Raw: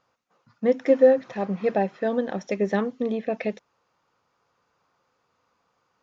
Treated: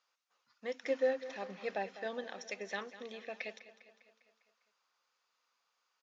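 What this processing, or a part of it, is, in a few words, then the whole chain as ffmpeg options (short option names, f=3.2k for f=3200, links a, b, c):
piezo pickup straight into a mixer: -filter_complex "[0:a]highpass=140,lowpass=5k,aderivative,asettb=1/sr,asplit=3[a][b][c];[a]atrim=end=0.854[d];[b]atrim=start=0.85:end=2.24,asetpts=PTS-STARTPTS,afade=t=in:d=0.004:c=qsin,afade=t=out:st=1.386:d=0.004:c=qsin,equalizer=f=180:w=0.34:g=5[e];[c]atrim=start=2.236[f];[d][e]acrossfade=d=0.004:c1=hsin:c2=qsin[g];[g][f]acrossfade=d=0.004:c1=qsin:c2=hsin,aecho=1:1:201|402|603|804|1005|1206:0.178|0.101|0.0578|0.0329|0.0188|0.0107,volume=4.5dB"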